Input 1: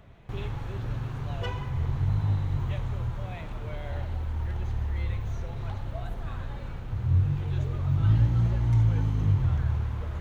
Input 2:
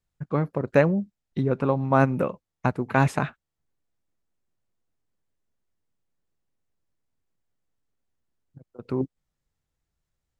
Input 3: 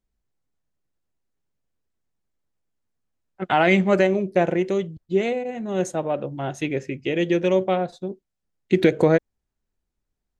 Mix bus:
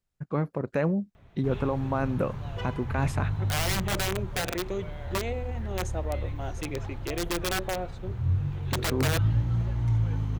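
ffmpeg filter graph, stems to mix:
-filter_complex "[0:a]adelay=1150,volume=0.708[s0];[1:a]alimiter=limit=0.2:level=0:latency=1:release=38,volume=0.75[s1];[2:a]lowshelf=f=130:g=-9.5,aeval=exprs='(mod(5.31*val(0)+1,2)-1)/5.31':c=same,volume=0.376[s2];[s0][s1][s2]amix=inputs=3:normalize=0"

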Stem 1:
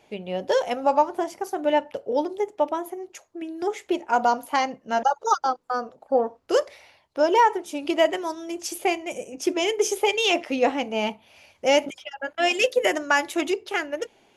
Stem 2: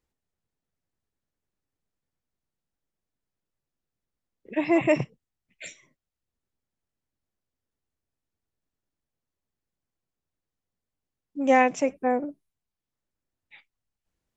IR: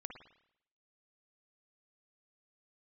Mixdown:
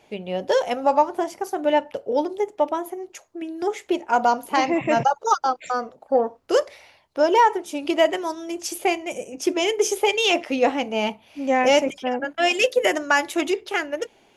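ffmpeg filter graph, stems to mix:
-filter_complex "[0:a]volume=0.668[s0];[1:a]volume=0.473[s1];[s0][s1]amix=inputs=2:normalize=0,acontrast=37"

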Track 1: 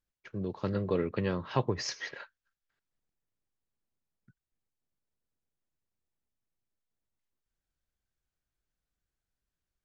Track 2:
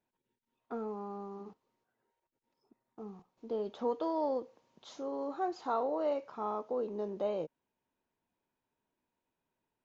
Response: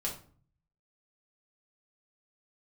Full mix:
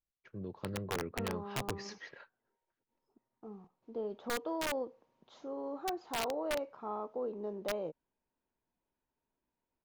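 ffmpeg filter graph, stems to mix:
-filter_complex "[0:a]highshelf=f=2600:g=-6.5,volume=0.422[s0];[1:a]lowpass=f=3200:p=1,highshelf=f=2500:g=-3.5,adelay=450,volume=0.75[s1];[s0][s1]amix=inputs=2:normalize=0,aeval=exprs='(mod(23.7*val(0)+1,2)-1)/23.7':c=same"

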